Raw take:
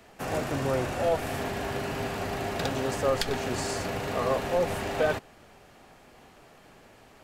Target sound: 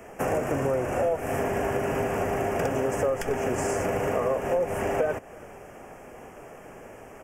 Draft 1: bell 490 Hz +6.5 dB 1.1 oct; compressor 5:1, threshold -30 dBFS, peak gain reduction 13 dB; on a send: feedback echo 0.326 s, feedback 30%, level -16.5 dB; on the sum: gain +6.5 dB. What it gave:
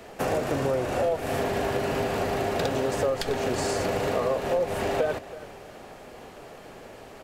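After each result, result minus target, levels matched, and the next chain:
4000 Hz band +9.0 dB; echo-to-direct +8 dB
Butterworth band-stop 4000 Hz, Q 1.3; bell 490 Hz +6.5 dB 1.1 oct; compressor 5:1, threshold -30 dBFS, peak gain reduction 13 dB; on a send: feedback echo 0.326 s, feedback 30%, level -16.5 dB; on the sum: gain +6.5 dB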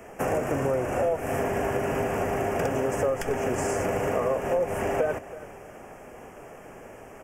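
echo-to-direct +8 dB
Butterworth band-stop 4000 Hz, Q 1.3; bell 490 Hz +6.5 dB 1.1 oct; compressor 5:1, threshold -30 dBFS, peak gain reduction 13 dB; on a send: feedback echo 0.326 s, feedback 30%, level -24.5 dB; on the sum: gain +6.5 dB

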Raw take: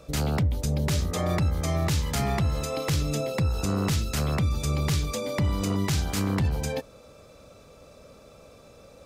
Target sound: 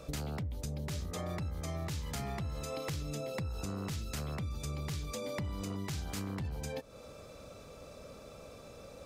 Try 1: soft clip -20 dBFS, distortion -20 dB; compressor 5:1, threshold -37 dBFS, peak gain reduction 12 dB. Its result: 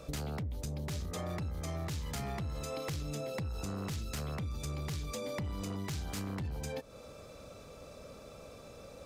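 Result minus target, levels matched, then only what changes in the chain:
soft clip: distortion +19 dB
change: soft clip -9.5 dBFS, distortion -38 dB

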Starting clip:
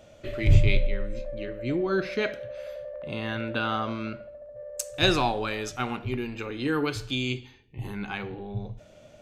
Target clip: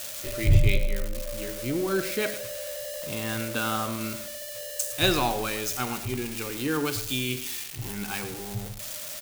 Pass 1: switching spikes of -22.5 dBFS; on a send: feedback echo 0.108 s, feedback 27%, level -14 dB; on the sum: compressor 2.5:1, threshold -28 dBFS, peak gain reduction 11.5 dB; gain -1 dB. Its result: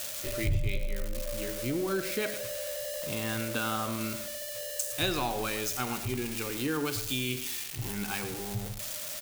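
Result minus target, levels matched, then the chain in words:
compressor: peak gain reduction +11.5 dB
switching spikes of -22.5 dBFS; on a send: feedback echo 0.108 s, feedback 27%, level -14 dB; on the sum: gain -1 dB

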